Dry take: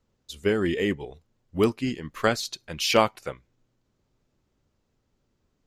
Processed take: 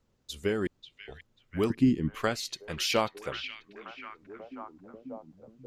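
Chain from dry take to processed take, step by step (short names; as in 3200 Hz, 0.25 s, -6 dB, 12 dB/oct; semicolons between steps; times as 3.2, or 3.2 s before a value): 1.7–2.15 resonant low shelf 440 Hz +12 dB, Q 1.5; compressor 1.5:1, threshold -35 dBFS, peak gain reduction 9 dB; 0.67–1.08 room tone; delay with a stepping band-pass 0.539 s, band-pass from 2700 Hz, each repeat -0.7 oct, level -6 dB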